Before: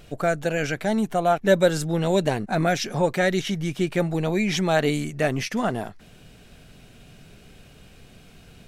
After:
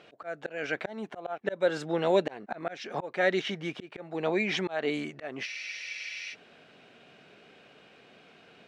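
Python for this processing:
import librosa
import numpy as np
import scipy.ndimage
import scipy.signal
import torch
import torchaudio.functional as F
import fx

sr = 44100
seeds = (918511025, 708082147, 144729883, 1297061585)

y = fx.bandpass_edges(x, sr, low_hz=360.0, high_hz=3100.0)
y = fx.auto_swell(y, sr, attack_ms=317.0)
y = fx.spec_freeze(y, sr, seeds[0], at_s=5.49, hold_s=0.83)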